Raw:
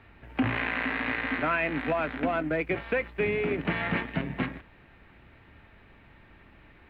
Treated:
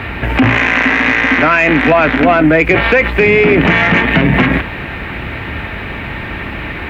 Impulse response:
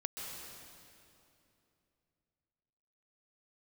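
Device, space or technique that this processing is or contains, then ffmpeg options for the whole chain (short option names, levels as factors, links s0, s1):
mastering chain: -af "highpass=41,equalizer=f=2300:t=o:w=0.84:g=3.5,acompressor=threshold=0.0316:ratio=2.5,asoftclip=type=tanh:threshold=0.106,alimiter=level_in=42.2:limit=0.891:release=50:level=0:latency=1,volume=0.891"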